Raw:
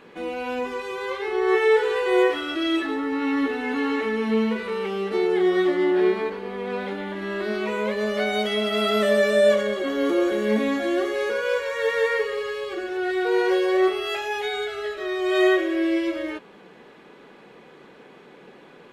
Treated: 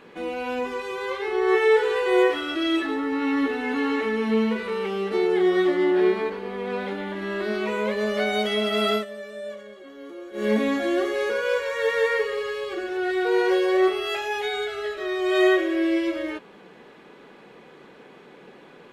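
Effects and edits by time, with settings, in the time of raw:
0:08.93–0:10.45: duck −18 dB, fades 0.12 s

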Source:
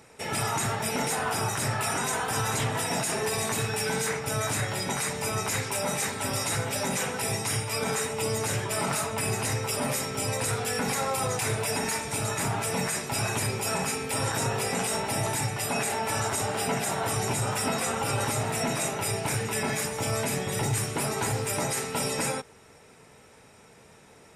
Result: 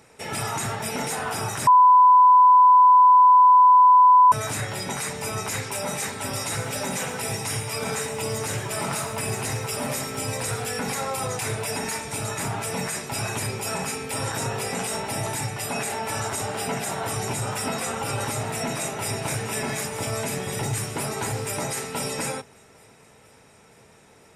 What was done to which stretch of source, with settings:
0:01.67–0:04.32: beep over 1,000 Hz −10 dBFS
0:06.43–0:10.66: feedback echo at a low word length 110 ms, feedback 55%, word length 9 bits, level −11 dB
0:18.50–0:19.15: delay throw 470 ms, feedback 70%, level −7 dB

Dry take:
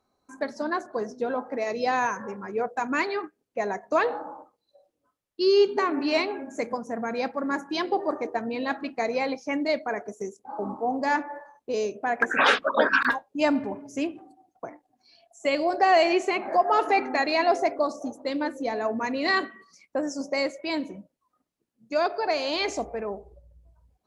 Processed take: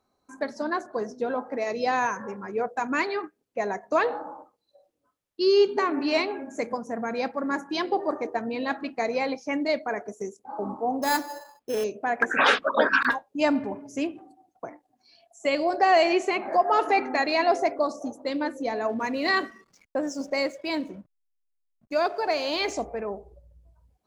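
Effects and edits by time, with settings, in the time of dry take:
0:11.02–0:11.84: sample-rate reduction 5,800 Hz
0:18.89–0:22.73: slack as between gear wheels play −49.5 dBFS

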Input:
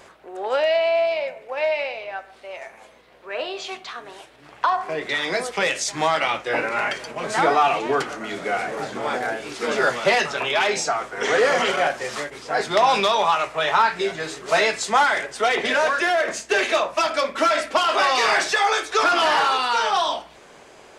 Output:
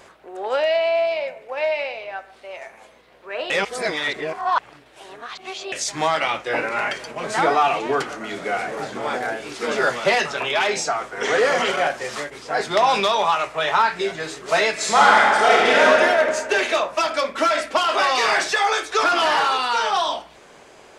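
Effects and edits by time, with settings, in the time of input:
0:03.50–0:05.72: reverse
0:14.72–0:15.87: thrown reverb, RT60 2.2 s, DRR −5 dB

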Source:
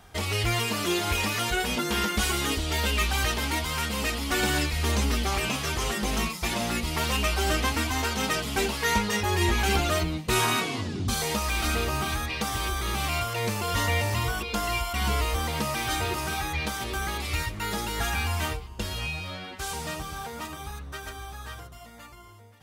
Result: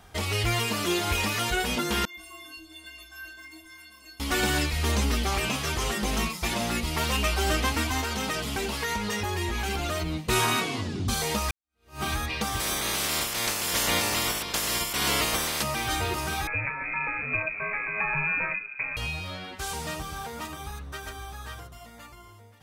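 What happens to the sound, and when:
0:02.05–0:04.20: stiff-string resonator 320 Hz, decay 0.65 s, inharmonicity 0.03
0:08.00–0:10.15: downward compressor, threshold −25 dBFS
0:11.51–0:12.03: fade in exponential
0:12.59–0:15.62: ceiling on every frequency bin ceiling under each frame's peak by 24 dB
0:16.47–0:18.97: voice inversion scrambler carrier 2,500 Hz

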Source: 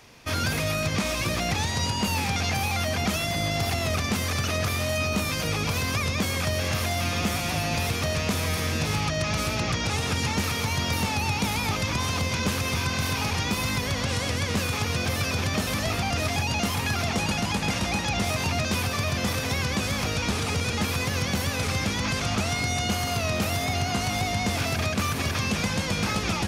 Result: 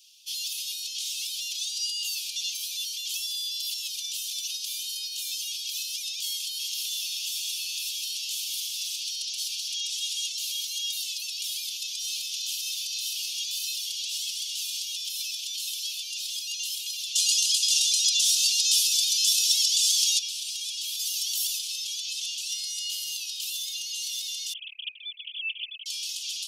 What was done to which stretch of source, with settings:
0:06.40–0:10.28: single-tap delay 200 ms −6.5 dB
0:11.50–0:14.85: single-tap delay 586 ms −6.5 dB
0:17.15–0:20.19: parametric band 7,200 Hz +12.5 dB 2.4 octaves
0:20.99–0:21.59: high-shelf EQ 6,600 Hz +9.5 dB
0:24.53–0:25.86: three sine waves on the formant tracks
whole clip: Butterworth high-pass 2,900 Hz 72 dB per octave; comb filter 4.6 ms

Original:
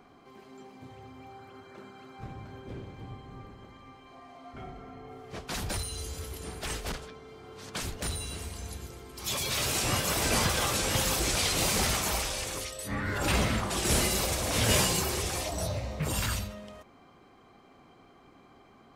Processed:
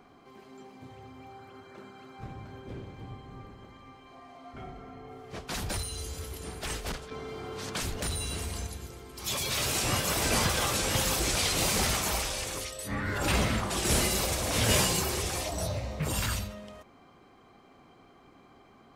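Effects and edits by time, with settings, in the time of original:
0:07.11–0:08.67: envelope flattener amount 50%

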